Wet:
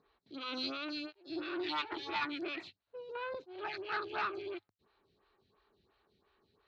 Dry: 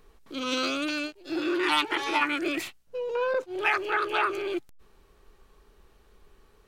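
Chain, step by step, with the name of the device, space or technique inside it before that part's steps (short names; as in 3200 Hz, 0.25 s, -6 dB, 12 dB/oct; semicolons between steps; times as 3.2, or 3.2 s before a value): vibe pedal into a guitar amplifier (photocell phaser 2.9 Hz; tube stage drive 22 dB, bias 0.4; speaker cabinet 100–4500 Hz, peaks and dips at 100 Hz +9 dB, 500 Hz -5 dB, 4100 Hz +10 dB); gain -6 dB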